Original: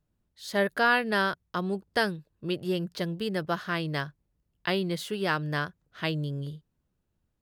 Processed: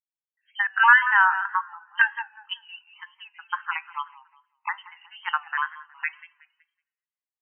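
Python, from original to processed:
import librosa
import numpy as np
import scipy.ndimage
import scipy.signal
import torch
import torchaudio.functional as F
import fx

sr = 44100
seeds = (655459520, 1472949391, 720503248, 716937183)

p1 = fx.spec_dropout(x, sr, seeds[0], share_pct=39)
p2 = fx.brickwall_bandpass(p1, sr, low_hz=770.0, high_hz=3100.0)
p3 = p2 + fx.echo_feedback(p2, sr, ms=186, feedback_pct=42, wet_db=-11.0, dry=0)
p4 = fx.lpc_vocoder(p3, sr, seeds[1], excitation='pitch_kept', order=16, at=(1.41, 3.03))
p5 = fx.level_steps(p4, sr, step_db=20)
p6 = p4 + (p5 * librosa.db_to_amplitude(2.0))
p7 = fx.rev_double_slope(p6, sr, seeds[2], early_s=0.99, late_s=2.7, knee_db=-18, drr_db=12.5)
p8 = fx.wow_flutter(p7, sr, seeds[3], rate_hz=2.1, depth_cents=76.0)
p9 = fx.spectral_expand(p8, sr, expansion=1.5)
y = p9 * librosa.db_to_amplitude(6.0)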